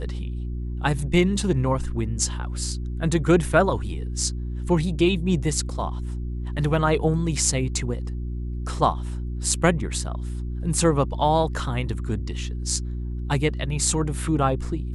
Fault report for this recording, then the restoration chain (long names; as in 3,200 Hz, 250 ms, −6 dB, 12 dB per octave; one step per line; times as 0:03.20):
mains hum 60 Hz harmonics 6 −29 dBFS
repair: hum removal 60 Hz, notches 6